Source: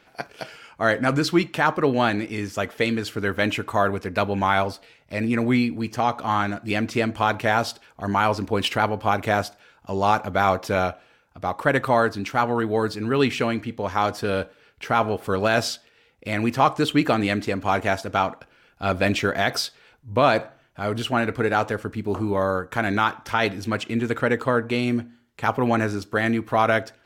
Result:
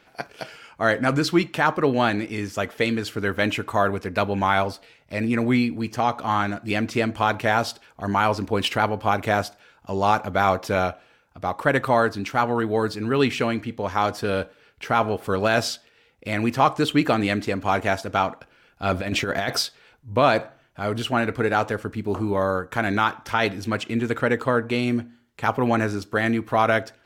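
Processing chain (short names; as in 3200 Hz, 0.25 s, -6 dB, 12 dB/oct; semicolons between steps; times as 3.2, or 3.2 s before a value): 18.92–19.63 negative-ratio compressor -23 dBFS, ratio -0.5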